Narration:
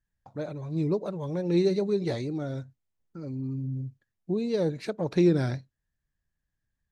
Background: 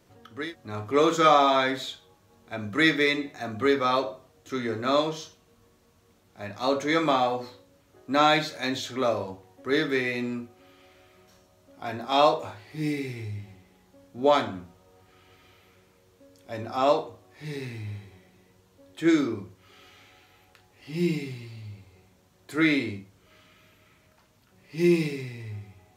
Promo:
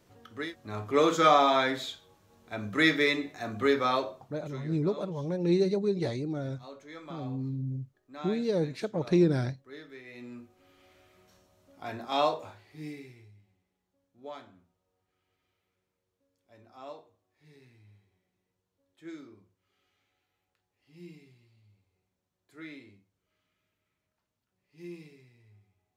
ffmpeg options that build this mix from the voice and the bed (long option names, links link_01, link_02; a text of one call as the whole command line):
ffmpeg -i stem1.wav -i stem2.wav -filter_complex "[0:a]adelay=3950,volume=-1.5dB[link_01];[1:a]volume=14.5dB,afade=type=out:start_time=3.83:duration=0.96:silence=0.105925,afade=type=in:start_time=10.04:duration=0.87:silence=0.141254,afade=type=out:start_time=11.97:duration=1.37:silence=0.133352[link_02];[link_01][link_02]amix=inputs=2:normalize=0" out.wav